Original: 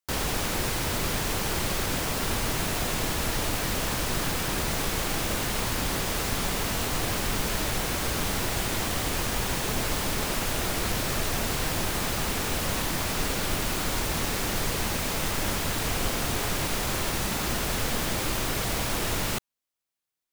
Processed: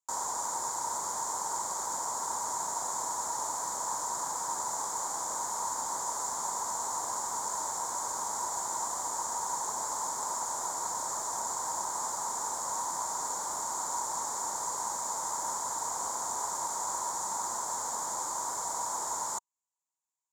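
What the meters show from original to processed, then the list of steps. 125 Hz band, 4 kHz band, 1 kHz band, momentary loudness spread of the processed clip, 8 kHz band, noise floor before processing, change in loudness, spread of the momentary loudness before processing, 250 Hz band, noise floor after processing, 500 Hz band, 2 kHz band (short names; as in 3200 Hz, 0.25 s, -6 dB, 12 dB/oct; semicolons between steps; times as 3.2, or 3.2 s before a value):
-28.0 dB, -15.0 dB, +1.0 dB, 1 LU, +0.5 dB, -45 dBFS, -5.0 dB, 0 LU, -20.5 dB, -50 dBFS, -12.0 dB, -17.0 dB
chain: double band-pass 2600 Hz, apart 2.9 oct; gain +7 dB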